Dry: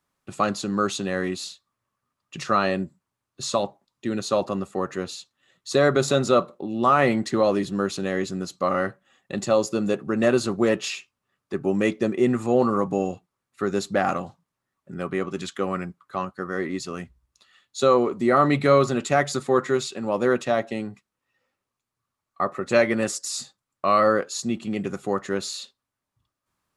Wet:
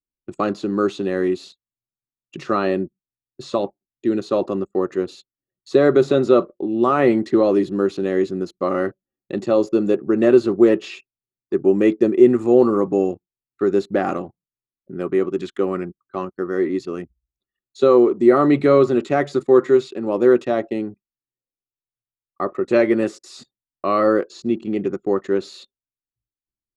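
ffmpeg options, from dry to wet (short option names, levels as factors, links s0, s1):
-filter_complex "[0:a]asettb=1/sr,asplit=3[s0][s1][s2];[s0]atrim=end=24.274[s3];[s1]atrim=start=24.27:end=25.45,asetpts=PTS-STARTPTS,afade=t=in:d=0.004:c=qsin,afade=t=out:st=1.176:d=0.004:c=qsin,lowpass=7400[s4];[s2]atrim=start=25.446[s5];[s3][s4]acrossfade=d=0.004:c1=hsin:c2=qsin[s6];[s6][s5]acrossfade=d=0.004:c1=qsin:c2=hsin,anlmdn=0.251,acrossover=split=4200[s7][s8];[s8]acompressor=threshold=0.00398:ratio=4:attack=1:release=60[s9];[s7][s9]amix=inputs=2:normalize=0,equalizer=f=350:t=o:w=0.88:g=13,volume=0.794"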